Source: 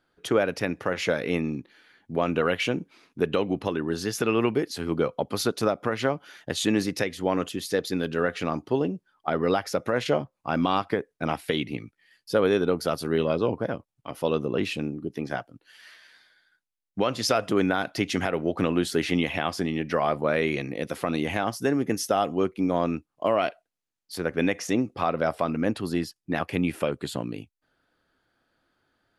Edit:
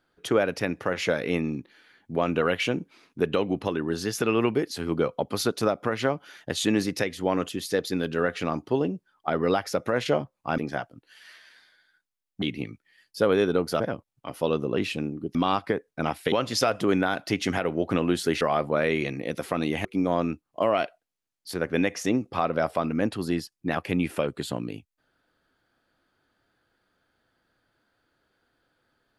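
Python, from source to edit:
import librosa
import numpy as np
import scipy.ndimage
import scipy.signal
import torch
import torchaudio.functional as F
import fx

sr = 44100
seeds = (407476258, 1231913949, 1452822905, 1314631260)

y = fx.edit(x, sr, fx.swap(start_s=10.58, length_s=0.97, other_s=15.16, other_length_s=1.84),
    fx.cut(start_s=12.93, length_s=0.68),
    fx.cut(start_s=19.09, length_s=0.84),
    fx.cut(start_s=21.37, length_s=1.12), tone=tone)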